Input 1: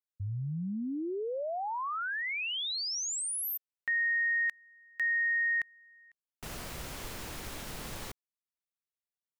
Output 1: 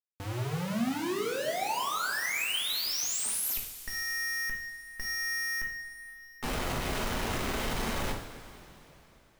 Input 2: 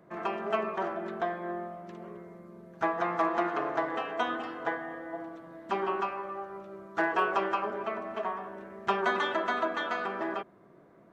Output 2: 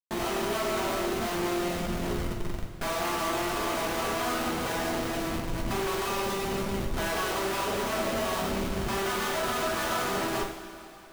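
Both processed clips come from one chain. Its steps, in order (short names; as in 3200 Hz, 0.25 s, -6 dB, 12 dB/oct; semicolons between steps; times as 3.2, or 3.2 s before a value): Schmitt trigger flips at -42 dBFS; two-slope reverb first 0.54 s, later 3.5 s, from -15 dB, DRR -1 dB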